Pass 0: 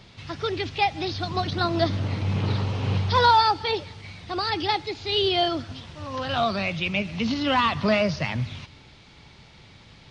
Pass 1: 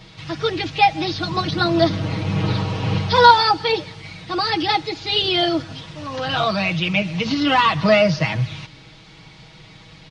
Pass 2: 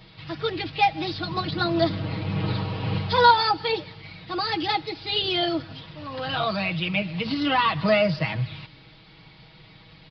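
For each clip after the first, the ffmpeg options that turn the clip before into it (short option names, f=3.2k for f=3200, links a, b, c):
-af "aecho=1:1:6.3:0.87,volume=3.5dB"
-af "aresample=11025,aresample=44100,volume=-5.5dB"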